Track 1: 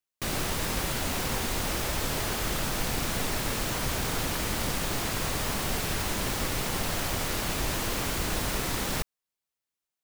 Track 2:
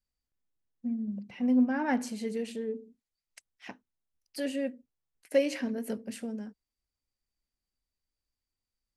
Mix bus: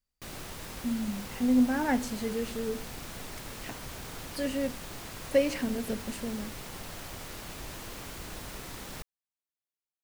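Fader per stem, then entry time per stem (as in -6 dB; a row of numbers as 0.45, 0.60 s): -12.0, +1.0 dB; 0.00, 0.00 s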